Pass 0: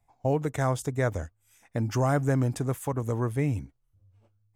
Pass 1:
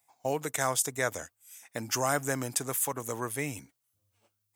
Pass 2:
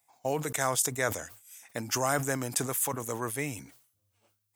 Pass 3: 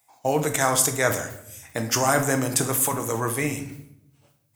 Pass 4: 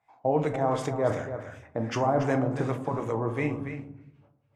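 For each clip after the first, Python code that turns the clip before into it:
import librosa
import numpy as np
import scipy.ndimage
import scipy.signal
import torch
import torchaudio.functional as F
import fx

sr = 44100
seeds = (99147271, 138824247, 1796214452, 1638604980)

y1 = scipy.signal.sosfilt(scipy.signal.butter(2, 110.0, 'highpass', fs=sr, output='sos'), x)
y1 = fx.tilt_eq(y1, sr, slope=4.0)
y2 = fx.sustainer(y1, sr, db_per_s=98.0)
y3 = fx.room_shoebox(y2, sr, seeds[0], volume_m3=200.0, walls='mixed', distance_m=0.55)
y3 = F.gain(torch.from_numpy(y3), 6.5).numpy()
y4 = fx.filter_lfo_lowpass(y3, sr, shape='sine', hz=2.7, low_hz=790.0, high_hz=2300.0, q=0.99)
y4 = y4 + 10.0 ** (-11.0 / 20.0) * np.pad(y4, (int(283 * sr / 1000.0), 0))[:len(y4)]
y4 = fx.dynamic_eq(y4, sr, hz=1500.0, q=1.5, threshold_db=-41.0, ratio=4.0, max_db=-7)
y4 = F.gain(torch.from_numpy(y4), -2.0).numpy()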